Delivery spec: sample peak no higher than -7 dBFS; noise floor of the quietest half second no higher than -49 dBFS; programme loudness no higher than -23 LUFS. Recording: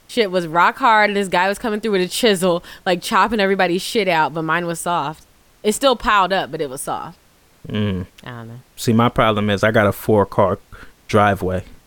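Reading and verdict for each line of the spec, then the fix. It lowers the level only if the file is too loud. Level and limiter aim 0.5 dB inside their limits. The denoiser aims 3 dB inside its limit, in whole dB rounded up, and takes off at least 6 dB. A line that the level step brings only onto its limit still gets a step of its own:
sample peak -3.0 dBFS: fail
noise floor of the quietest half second -53 dBFS: pass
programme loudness -18.0 LUFS: fail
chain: trim -5.5 dB

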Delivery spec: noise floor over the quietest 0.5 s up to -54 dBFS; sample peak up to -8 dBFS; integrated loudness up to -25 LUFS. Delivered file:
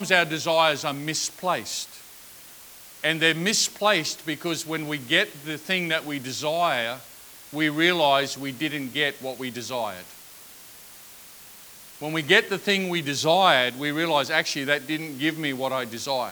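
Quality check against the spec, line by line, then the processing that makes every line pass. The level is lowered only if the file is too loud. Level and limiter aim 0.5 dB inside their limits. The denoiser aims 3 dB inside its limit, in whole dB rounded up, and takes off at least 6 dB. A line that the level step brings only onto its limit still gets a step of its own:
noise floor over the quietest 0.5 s -46 dBFS: fail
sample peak -3.5 dBFS: fail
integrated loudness -24.0 LUFS: fail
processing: noise reduction 10 dB, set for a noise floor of -46 dBFS; trim -1.5 dB; peak limiter -8.5 dBFS

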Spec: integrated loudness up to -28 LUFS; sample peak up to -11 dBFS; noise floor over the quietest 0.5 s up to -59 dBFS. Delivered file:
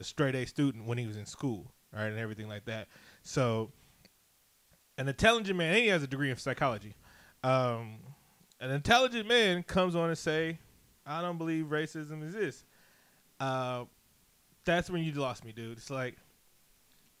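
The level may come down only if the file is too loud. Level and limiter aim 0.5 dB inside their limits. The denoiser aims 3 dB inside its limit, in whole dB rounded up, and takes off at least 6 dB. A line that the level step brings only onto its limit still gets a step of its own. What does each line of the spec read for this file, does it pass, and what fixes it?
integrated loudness -32.0 LUFS: pass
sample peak -10.0 dBFS: fail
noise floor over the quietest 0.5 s -68 dBFS: pass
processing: peak limiter -11.5 dBFS

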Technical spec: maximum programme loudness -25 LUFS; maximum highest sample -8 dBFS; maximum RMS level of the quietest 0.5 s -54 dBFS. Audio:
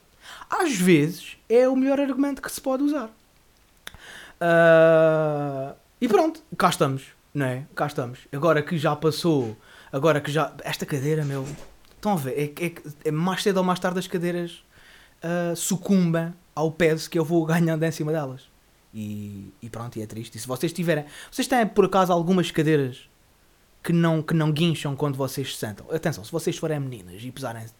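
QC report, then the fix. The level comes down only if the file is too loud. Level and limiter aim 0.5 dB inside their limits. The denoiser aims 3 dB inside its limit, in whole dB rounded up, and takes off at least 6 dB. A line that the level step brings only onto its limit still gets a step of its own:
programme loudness -23.5 LUFS: fail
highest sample -4.5 dBFS: fail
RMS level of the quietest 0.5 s -58 dBFS: pass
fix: trim -2 dB; peak limiter -8.5 dBFS

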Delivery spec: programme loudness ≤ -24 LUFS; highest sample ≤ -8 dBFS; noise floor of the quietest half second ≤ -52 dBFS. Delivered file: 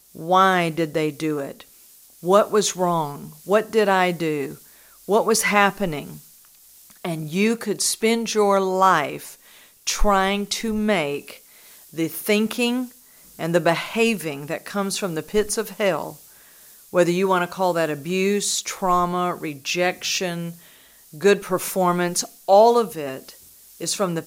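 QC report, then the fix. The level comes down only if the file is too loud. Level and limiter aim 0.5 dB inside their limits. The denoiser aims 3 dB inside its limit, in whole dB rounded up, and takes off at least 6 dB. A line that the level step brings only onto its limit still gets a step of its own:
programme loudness -21.0 LUFS: fail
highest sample -2.0 dBFS: fail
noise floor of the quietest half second -50 dBFS: fail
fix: trim -3.5 dB; peak limiter -8.5 dBFS

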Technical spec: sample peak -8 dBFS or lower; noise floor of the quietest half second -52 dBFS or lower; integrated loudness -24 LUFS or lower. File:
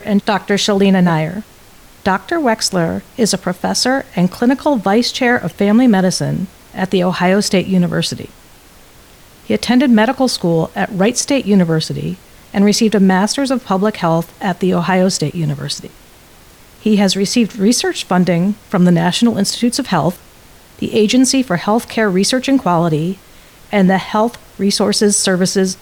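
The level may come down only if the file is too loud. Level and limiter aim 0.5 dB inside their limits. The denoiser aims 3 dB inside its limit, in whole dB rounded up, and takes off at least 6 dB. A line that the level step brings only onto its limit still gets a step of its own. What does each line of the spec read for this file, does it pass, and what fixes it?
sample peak -3.0 dBFS: fail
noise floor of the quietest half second -43 dBFS: fail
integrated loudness -14.5 LUFS: fail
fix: trim -10 dB

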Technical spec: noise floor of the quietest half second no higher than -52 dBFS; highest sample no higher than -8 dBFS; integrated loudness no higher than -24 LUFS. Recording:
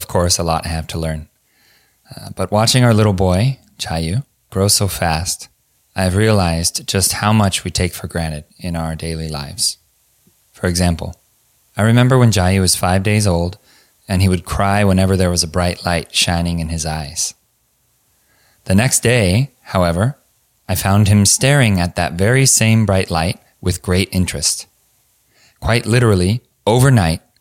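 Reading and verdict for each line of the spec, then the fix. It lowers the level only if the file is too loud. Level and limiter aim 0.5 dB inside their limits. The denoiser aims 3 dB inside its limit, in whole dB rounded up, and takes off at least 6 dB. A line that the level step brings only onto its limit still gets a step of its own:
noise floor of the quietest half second -61 dBFS: pass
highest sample -2.0 dBFS: fail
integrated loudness -15.5 LUFS: fail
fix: trim -9 dB

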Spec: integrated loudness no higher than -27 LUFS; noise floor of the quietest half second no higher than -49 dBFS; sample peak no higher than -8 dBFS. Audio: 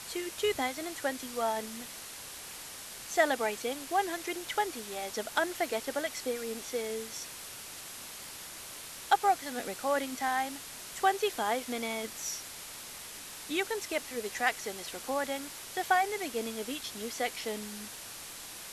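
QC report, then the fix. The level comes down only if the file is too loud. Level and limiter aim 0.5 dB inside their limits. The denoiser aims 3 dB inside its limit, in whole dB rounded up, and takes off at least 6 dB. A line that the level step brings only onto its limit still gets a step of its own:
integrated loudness -34.0 LUFS: pass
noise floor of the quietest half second -45 dBFS: fail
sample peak -11.5 dBFS: pass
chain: noise reduction 7 dB, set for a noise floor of -45 dBFS

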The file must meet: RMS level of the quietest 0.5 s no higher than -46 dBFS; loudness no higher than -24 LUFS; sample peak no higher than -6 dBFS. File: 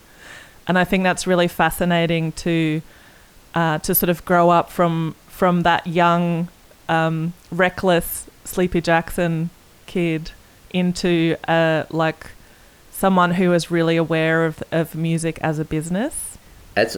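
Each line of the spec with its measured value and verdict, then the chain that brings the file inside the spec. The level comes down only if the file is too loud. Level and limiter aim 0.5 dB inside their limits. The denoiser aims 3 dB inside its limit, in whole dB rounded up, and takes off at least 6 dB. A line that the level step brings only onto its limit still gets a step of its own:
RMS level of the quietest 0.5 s -48 dBFS: pass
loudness -19.5 LUFS: fail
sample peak -5.0 dBFS: fail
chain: trim -5 dB

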